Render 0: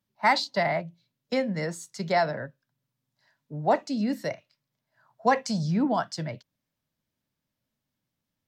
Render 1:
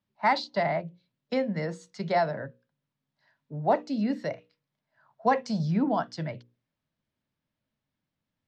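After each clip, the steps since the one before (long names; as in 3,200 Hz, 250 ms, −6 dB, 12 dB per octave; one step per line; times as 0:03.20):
low-pass filter 3,800 Hz 12 dB per octave
mains-hum notches 60/120/180/240/300/360/420/480/540 Hz
dynamic equaliser 2,000 Hz, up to −4 dB, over −38 dBFS, Q 0.77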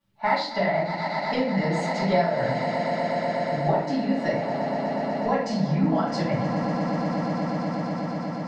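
on a send: echo that builds up and dies away 122 ms, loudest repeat 8, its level −18 dB
on the sum: downward compressor 5 to 1, threshold −31 dBFS, peak gain reduction 12 dB
rectangular room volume 67 cubic metres, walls mixed, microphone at 2.4 metres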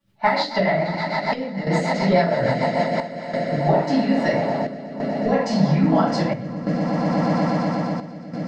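square-wave tremolo 0.6 Hz, depth 65%, duty 80%
rotating-speaker cabinet horn 6.7 Hz, later 0.6 Hz, at 0:02.66
level +7 dB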